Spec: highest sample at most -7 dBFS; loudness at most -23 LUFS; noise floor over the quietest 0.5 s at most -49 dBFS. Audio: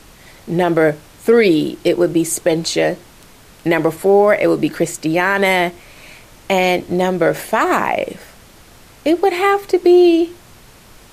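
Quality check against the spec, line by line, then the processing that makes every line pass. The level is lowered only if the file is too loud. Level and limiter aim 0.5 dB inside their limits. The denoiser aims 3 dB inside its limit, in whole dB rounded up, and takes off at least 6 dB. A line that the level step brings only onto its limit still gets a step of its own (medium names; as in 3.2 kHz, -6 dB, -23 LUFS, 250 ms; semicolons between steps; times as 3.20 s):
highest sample -3.0 dBFS: fail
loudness -15.5 LUFS: fail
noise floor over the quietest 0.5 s -44 dBFS: fail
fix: trim -8 dB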